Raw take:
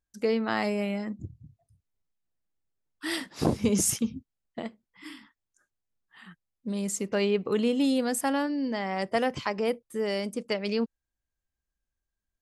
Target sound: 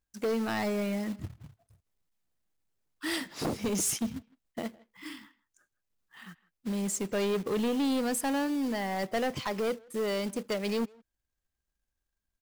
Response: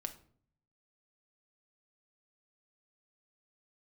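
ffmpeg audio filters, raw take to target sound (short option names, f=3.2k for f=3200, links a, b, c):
-filter_complex "[0:a]asettb=1/sr,asplit=3[a][b][c];[a]atrim=end=3.384[d];[b]atrim=start=3.38:end=4.02,asetpts=PTS-STARTPTS,afade=t=in:d=0.004:c=qsin,afade=t=out:st=0.636:d=0.004:c=qsin,lowshelf=f=200:g=-9.5[e];[c]atrim=start=4.016[f];[d][e]acrossfade=d=0.004:c1=hsin:c2=qsin[g];[g][f]acrossfade=d=0.004:c1=qsin:c2=hsin,acrusher=bits=3:mode=log:mix=0:aa=0.000001,asoftclip=type=tanh:threshold=-26dB,asplit=2[h][i];[i]adelay=160,highpass=300,lowpass=3.4k,asoftclip=type=hard:threshold=-34.5dB,volume=-20dB[j];[h][j]amix=inputs=2:normalize=0,volume=1dB"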